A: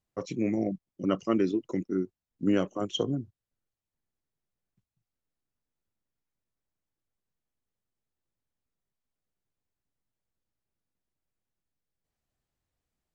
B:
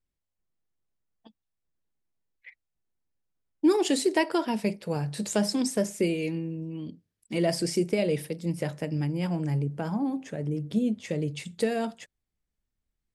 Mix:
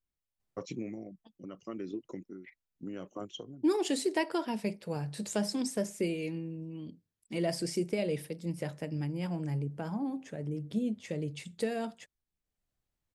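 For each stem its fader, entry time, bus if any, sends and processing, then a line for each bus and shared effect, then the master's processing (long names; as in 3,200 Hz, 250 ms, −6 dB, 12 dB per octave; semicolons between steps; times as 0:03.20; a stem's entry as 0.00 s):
−3.5 dB, 0.40 s, no send, downward compressor 12 to 1, threshold −29 dBFS, peak gain reduction 10 dB; automatic ducking −12 dB, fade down 0.50 s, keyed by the second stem
−6.0 dB, 0.00 s, no send, no processing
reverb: not used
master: no processing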